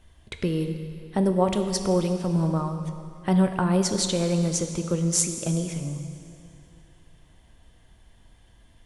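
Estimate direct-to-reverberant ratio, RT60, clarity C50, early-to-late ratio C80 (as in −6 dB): 6.5 dB, 2.6 s, 7.5 dB, 8.5 dB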